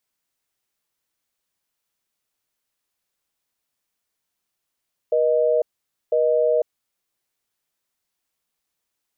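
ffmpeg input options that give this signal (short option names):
-f lavfi -i "aevalsrc='0.119*(sin(2*PI*480*t)+sin(2*PI*620*t))*clip(min(mod(t,1),0.5-mod(t,1))/0.005,0,1)':d=1.69:s=44100"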